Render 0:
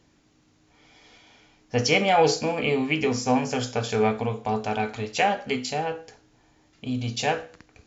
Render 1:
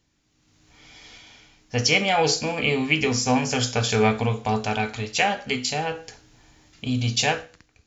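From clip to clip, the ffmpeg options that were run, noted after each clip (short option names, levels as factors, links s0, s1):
-af "equalizer=f=480:w=0.32:g=-8.5,dynaudnorm=f=100:g=11:m=5.01,volume=0.668"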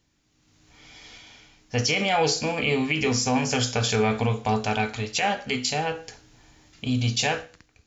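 -af "alimiter=limit=0.224:level=0:latency=1:release=39"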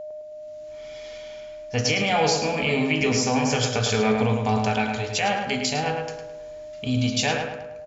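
-filter_complex "[0:a]aeval=exprs='val(0)+0.0224*sin(2*PI*610*n/s)':c=same,asplit=2[s0][s1];[s1]adelay=106,lowpass=f=2700:p=1,volume=0.631,asplit=2[s2][s3];[s3]adelay=106,lowpass=f=2700:p=1,volume=0.49,asplit=2[s4][s5];[s5]adelay=106,lowpass=f=2700:p=1,volume=0.49,asplit=2[s6][s7];[s7]adelay=106,lowpass=f=2700:p=1,volume=0.49,asplit=2[s8][s9];[s9]adelay=106,lowpass=f=2700:p=1,volume=0.49,asplit=2[s10][s11];[s11]adelay=106,lowpass=f=2700:p=1,volume=0.49[s12];[s2][s4][s6][s8][s10][s12]amix=inputs=6:normalize=0[s13];[s0][s13]amix=inputs=2:normalize=0"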